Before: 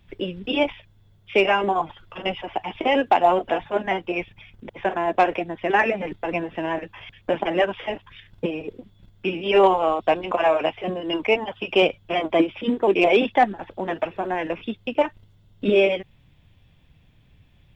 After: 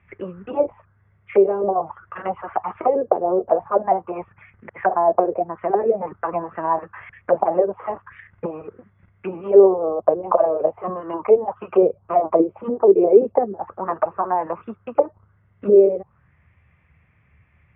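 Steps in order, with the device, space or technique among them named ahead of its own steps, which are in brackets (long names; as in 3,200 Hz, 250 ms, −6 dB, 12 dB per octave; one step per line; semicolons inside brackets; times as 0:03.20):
envelope filter bass rig (envelope-controlled low-pass 440–2,200 Hz down, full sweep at −16 dBFS; loudspeaker in its box 74–2,400 Hz, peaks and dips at 74 Hz +9 dB, 280 Hz −8 dB, 1,200 Hz +9 dB)
level −2.5 dB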